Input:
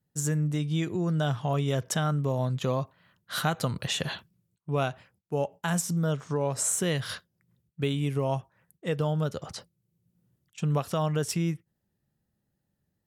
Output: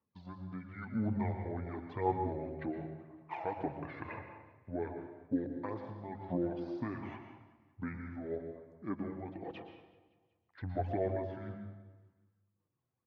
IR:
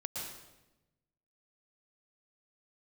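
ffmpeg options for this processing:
-filter_complex "[0:a]deesser=0.85,aemphasis=mode=reproduction:type=50fm,asplit=2[link_01][link_02];[link_02]acompressor=threshold=-39dB:ratio=6,volume=-1dB[link_03];[link_01][link_03]amix=inputs=2:normalize=0,tremolo=f=0.93:d=0.48,flanger=delay=2.7:depth=3.8:regen=33:speed=0.33:shape=triangular,asetrate=26990,aresample=44100,atempo=1.63392,aphaser=in_gain=1:out_gain=1:delay=1.5:decay=0.51:speed=1.9:type=sinusoidal,highpass=260,lowpass=2200,aecho=1:1:188|376|564|752:0.0944|0.0538|0.0307|0.0175,asplit=2[link_04][link_05];[1:a]atrim=start_sample=2205,lowshelf=frequency=140:gain=5.5[link_06];[link_05][link_06]afir=irnorm=-1:irlink=0,volume=-1dB[link_07];[link_04][link_07]amix=inputs=2:normalize=0,volume=-7dB"

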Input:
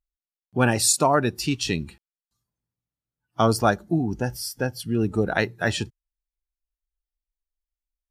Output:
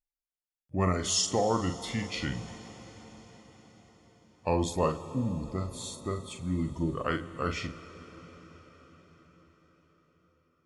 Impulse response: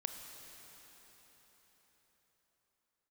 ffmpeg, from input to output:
-filter_complex "[0:a]bandreject=frequency=5200:width=7.4,asplit=2[link_01][link_02];[1:a]atrim=start_sample=2205,adelay=33[link_03];[link_02][link_03]afir=irnorm=-1:irlink=0,volume=-5.5dB[link_04];[link_01][link_04]amix=inputs=2:normalize=0,asetrate=33516,aresample=44100,volume=-8.5dB"

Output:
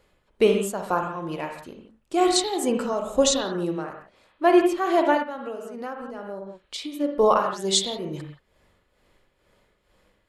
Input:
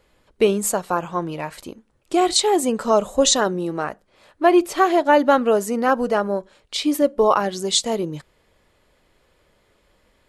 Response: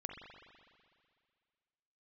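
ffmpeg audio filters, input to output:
-filter_complex "[0:a]tremolo=f=2.2:d=0.68[link_01];[1:a]atrim=start_sample=2205,afade=type=out:start_time=0.23:duration=0.01,atrim=end_sample=10584[link_02];[link_01][link_02]afir=irnorm=-1:irlink=0,asplit=3[link_03][link_04][link_05];[link_03]afade=type=out:start_time=5.22:duration=0.02[link_06];[link_04]acompressor=threshold=-34dB:ratio=6,afade=type=in:start_time=5.22:duration=0.02,afade=type=out:start_time=6.99:duration=0.02[link_07];[link_05]afade=type=in:start_time=6.99:duration=0.02[link_08];[link_06][link_07][link_08]amix=inputs=3:normalize=0,volume=2dB"

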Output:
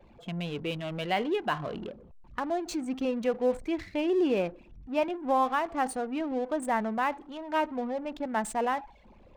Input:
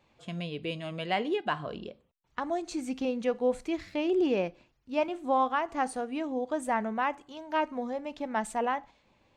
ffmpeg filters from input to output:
ffmpeg -i in.wav -af "aeval=exprs='val(0)+0.5*0.0106*sgn(val(0))':channel_layout=same,anlmdn=0.631" out.wav

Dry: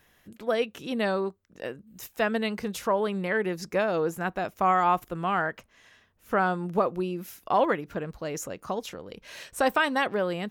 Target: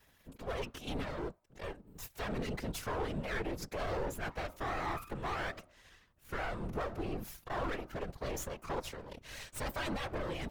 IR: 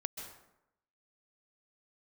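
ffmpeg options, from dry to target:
-filter_complex "[0:a]bandreject=frequency=310.9:width_type=h:width=4,bandreject=frequency=621.8:width_type=h:width=4,bandreject=frequency=932.7:width_type=h:width=4,bandreject=frequency=1243.6:width_type=h:width=4,alimiter=limit=-23dB:level=0:latency=1:release=14,asettb=1/sr,asplit=3[link_01][link_02][link_03];[link_01]atrim=end=0.794[link_04];[link_02]atrim=start=0.79:end=1.63,asetpts=PTS-STARTPTS,afade=type=in:duration=0.004:curve=qsin,afade=type=out:start_time=0.836:duration=0.004:curve=qsin,acrossover=split=380[link_05][link_06];[link_06]acompressor=threshold=-35dB:ratio=6[link_07];[link_05][link_07]amix=inputs=2:normalize=0[link_08];[link_03]atrim=start=1.626[link_09];[link_04][link_08]acrossfade=duration=0.004:curve1=hsin:curve2=qsin[link_10];[link_10][link_09]acrossfade=duration=0.004:curve1=qsin:curve2=hsin,aeval=exprs='max(val(0),0)':channel_layout=same,afftfilt=real='hypot(re,im)*cos(2*PI*random(0))':imag='hypot(re,im)*sin(2*PI*random(1))':win_size=512:overlap=0.75,asoftclip=type=tanh:threshold=-34.5dB,volume=6dB"

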